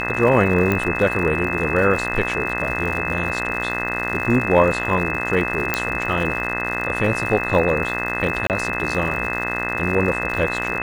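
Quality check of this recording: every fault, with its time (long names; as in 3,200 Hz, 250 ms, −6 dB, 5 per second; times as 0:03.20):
mains buzz 60 Hz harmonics 35 −27 dBFS
surface crackle 140 per second −28 dBFS
whistle 2,600 Hz −25 dBFS
0:00.72: click −8 dBFS
0:05.74: click −3 dBFS
0:08.47–0:08.50: drop-out 28 ms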